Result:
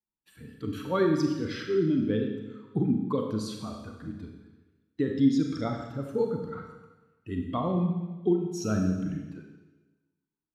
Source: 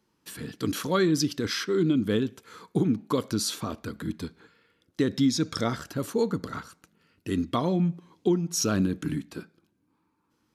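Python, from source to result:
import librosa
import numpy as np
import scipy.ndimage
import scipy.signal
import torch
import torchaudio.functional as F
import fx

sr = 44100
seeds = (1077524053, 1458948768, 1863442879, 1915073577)

y = fx.bin_expand(x, sr, power=1.5)
y = fx.lowpass(y, sr, hz=1400.0, slope=6)
y = fx.rev_schroeder(y, sr, rt60_s=1.2, comb_ms=29, drr_db=2.5)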